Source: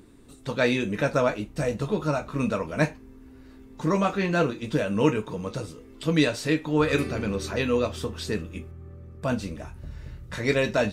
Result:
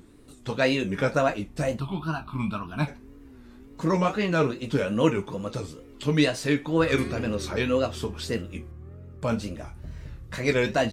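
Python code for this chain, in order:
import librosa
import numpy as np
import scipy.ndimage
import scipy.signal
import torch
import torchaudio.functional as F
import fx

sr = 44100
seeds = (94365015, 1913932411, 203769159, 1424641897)

y = fx.fixed_phaser(x, sr, hz=1900.0, stages=6, at=(1.79, 2.87), fade=0.02)
y = fx.wow_flutter(y, sr, seeds[0], rate_hz=2.1, depth_cents=140.0)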